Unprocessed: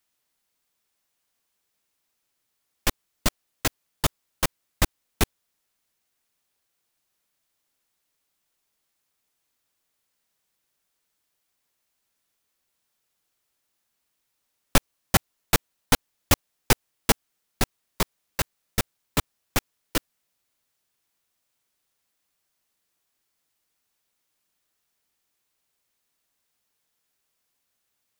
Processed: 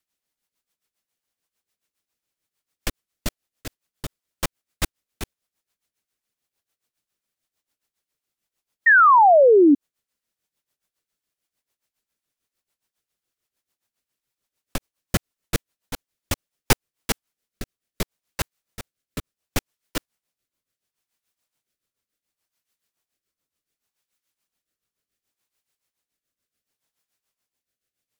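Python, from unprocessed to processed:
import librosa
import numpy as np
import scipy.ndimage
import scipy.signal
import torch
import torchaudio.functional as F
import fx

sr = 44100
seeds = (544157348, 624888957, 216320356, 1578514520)

y = fx.rotary_switch(x, sr, hz=8.0, then_hz=0.7, switch_at_s=16.19)
y = y * (1.0 - 0.76 / 2.0 + 0.76 / 2.0 * np.cos(2.0 * np.pi * 7.0 * (np.arange(len(y)) / sr)))
y = fx.spec_paint(y, sr, seeds[0], shape='fall', start_s=8.86, length_s=0.89, low_hz=270.0, high_hz=1900.0, level_db=-14.0)
y = y * 10.0 ** (1.5 / 20.0)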